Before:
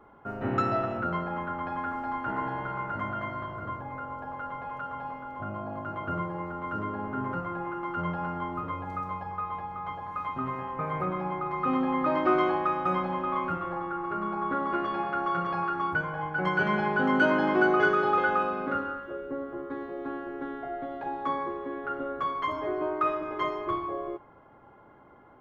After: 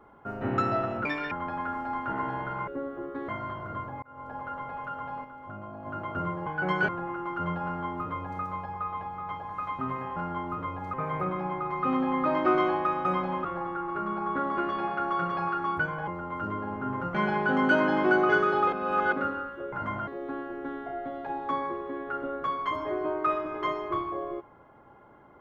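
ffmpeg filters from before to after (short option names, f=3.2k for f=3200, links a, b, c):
-filter_complex "[0:a]asplit=19[a][b][c][d][e][f][g][h][i][j][k][l][m][n][o][p][q][r][s];[a]atrim=end=1.054[t];[b]atrim=start=1.05:end=1.5,asetpts=PTS-STARTPTS,asetrate=74970,aresample=44100[u];[c]atrim=start=1.496:end=2.862[v];[d]atrim=start=19.228:end=19.842[w];[e]atrim=start=3.208:end=3.95,asetpts=PTS-STARTPTS,afade=t=out:st=0.738:d=0.004:c=hsin[x];[f]atrim=start=3.95:end=5.172,asetpts=PTS-STARTPTS,afade=t=in:d=0.31[y];[g]atrim=start=5.168:end=5.792,asetpts=PTS-STARTPTS,volume=-5.5dB[z];[h]atrim=start=5.788:end=6.392[aa];[i]atrim=start=16.228:end=16.652[ab];[j]atrim=start=7.458:end=10.742[ac];[k]atrim=start=8.218:end=8.992[ad];[l]atrim=start=10.738:end=13.252[ae];[m]atrim=start=13.598:end=16.232[af];[n]atrim=start=6.388:end=7.462[ag];[o]atrim=start=16.648:end=18.232[ah];[p]atrim=start=18.228:end=18.632,asetpts=PTS-STARTPTS,areverse[ai];[q]atrim=start=18.628:end=19.232[aj];[r]atrim=start=2.858:end=3.212[ak];[s]atrim=start=19.838[al];[t][u]acrossfade=d=0.004:c1=hsin:c2=hsin[am];[am][v]acrossfade=d=0.004:c1=hsin:c2=hsin[an];[an][w]acrossfade=d=0.004:c1=hsin:c2=hsin[ao];[x][y]concat=n=2:v=0:a=1[ap];[ao][ap]acrossfade=d=0.004:c1=hsin:c2=hsin[aq];[aq][z]acrossfade=d=0.004:c1=hsin:c2=hsin[ar];[ar][aa]acrossfade=d=0.004:c1=hsin:c2=hsin[as];[as][ab]acrossfade=d=0.004:c1=hsin:c2=hsin[at];[at][ac]acrossfade=d=0.004:c1=hsin:c2=hsin[au];[au][ad]acrossfade=d=0.004:c1=hsin:c2=hsin[av];[av][ae]acrossfade=d=0.004:c1=hsin:c2=hsin[aw];[aw][af]acrossfade=d=0.004:c1=hsin:c2=hsin[ax];[ax][ag]acrossfade=d=0.004:c1=hsin:c2=hsin[ay];[ay][ah]acrossfade=d=0.004:c1=hsin:c2=hsin[az];[az][ai]acrossfade=d=0.004:c1=hsin:c2=hsin[ba];[ba][aj]acrossfade=d=0.004:c1=hsin:c2=hsin[bb];[bb][ak]acrossfade=d=0.004:c1=hsin:c2=hsin[bc];[bc][al]acrossfade=d=0.004:c1=hsin:c2=hsin"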